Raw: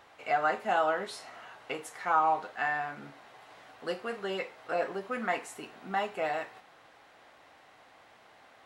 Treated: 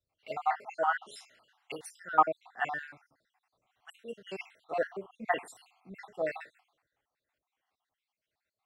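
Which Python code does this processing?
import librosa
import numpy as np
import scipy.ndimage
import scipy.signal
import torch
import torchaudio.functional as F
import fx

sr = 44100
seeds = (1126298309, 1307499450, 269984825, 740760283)

y = fx.spec_dropout(x, sr, seeds[0], share_pct=64)
y = fx.band_widen(y, sr, depth_pct=100)
y = y * 10.0 ** (-2.0 / 20.0)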